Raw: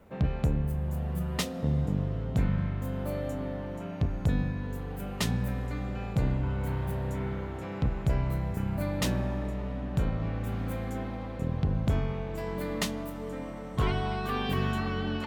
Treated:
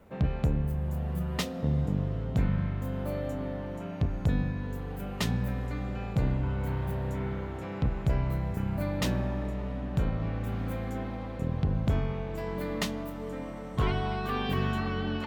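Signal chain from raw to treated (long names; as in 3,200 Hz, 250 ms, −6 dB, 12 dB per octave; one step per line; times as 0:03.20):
dynamic equaliser 9,600 Hz, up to −5 dB, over −59 dBFS, Q 0.77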